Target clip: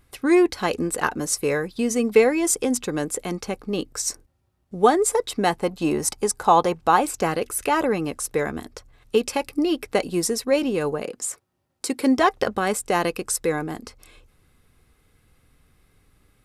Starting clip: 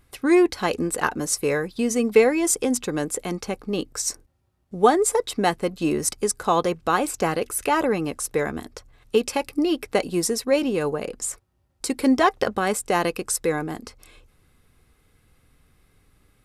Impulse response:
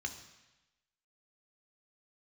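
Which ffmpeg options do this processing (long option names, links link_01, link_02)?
-filter_complex "[0:a]asettb=1/sr,asplit=3[link_01][link_02][link_03];[link_01]atrim=end=5.504[link_04];[link_02]atrim=start=5.5:end=7.01,asetpts=PTS-STARTPTS,afade=type=in:duration=0.004:curve=qsin,afade=type=out:start_time=1.506:duration=0.004:curve=qsin,equalizer=frequency=850:width_type=o:width=0.51:gain=9[link_05];[link_03]atrim=start=7.006[link_06];[link_04][link_05]acrossfade=duration=0.004:curve1=hsin:curve2=qsin[link_07];[link_07][link_06]acrossfade=duration=0.004:curve1=qsin:curve2=hsin,asettb=1/sr,asplit=3[link_08][link_09][link_10];[link_08]atrim=end=11.024[link_11];[link_09]atrim=start=11.02:end=12.18,asetpts=PTS-STARTPTS,afade=type=in:duration=0.004:curve=qsin,afade=type=out:start_time=1.156:duration=0.004:curve=qsin,highpass=150[link_12];[link_10]atrim=start=12.176[link_13];[link_11][link_12]acrossfade=duration=0.004:curve1=hsin:curve2=qsin[link_14];[link_14][link_13]acrossfade=duration=0.004:curve1=qsin:curve2=hsin"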